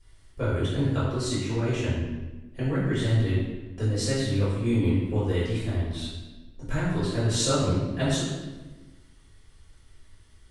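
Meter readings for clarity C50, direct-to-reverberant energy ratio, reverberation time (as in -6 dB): -0.5 dB, -11.5 dB, 1.2 s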